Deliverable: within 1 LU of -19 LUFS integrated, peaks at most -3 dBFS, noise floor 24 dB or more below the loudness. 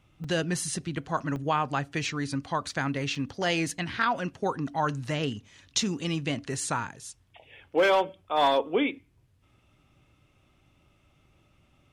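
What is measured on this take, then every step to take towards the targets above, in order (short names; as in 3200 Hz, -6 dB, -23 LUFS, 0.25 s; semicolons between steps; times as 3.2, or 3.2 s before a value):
dropouts 3; longest dropout 4.0 ms; loudness -28.5 LUFS; peak -11.0 dBFS; loudness target -19.0 LUFS
-> interpolate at 0.24/1.36/3.15, 4 ms; gain +9.5 dB; limiter -3 dBFS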